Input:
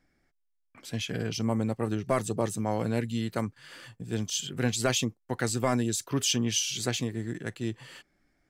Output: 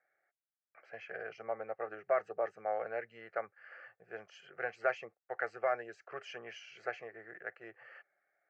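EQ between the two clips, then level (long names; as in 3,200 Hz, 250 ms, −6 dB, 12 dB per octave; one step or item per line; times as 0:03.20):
four-pole ladder band-pass 1,100 Hz, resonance 20%
high-frequency loss of the air 190 metres
phaser with its sweep stopped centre 980 Hz, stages 6
+13.0 dB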